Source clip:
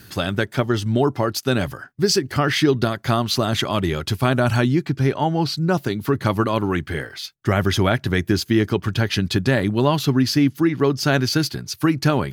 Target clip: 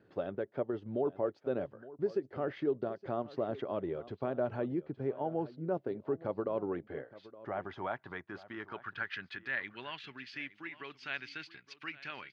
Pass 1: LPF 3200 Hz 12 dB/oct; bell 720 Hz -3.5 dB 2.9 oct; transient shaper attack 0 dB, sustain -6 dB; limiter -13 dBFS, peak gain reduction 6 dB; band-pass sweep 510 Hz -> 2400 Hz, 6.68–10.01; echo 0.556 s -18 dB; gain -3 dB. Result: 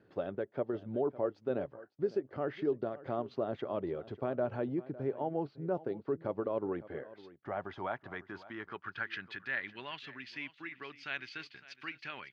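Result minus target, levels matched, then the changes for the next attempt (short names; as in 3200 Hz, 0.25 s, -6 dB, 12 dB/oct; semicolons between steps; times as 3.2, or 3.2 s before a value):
echo 0.311 s early
change: echo 0.867 s -18 dB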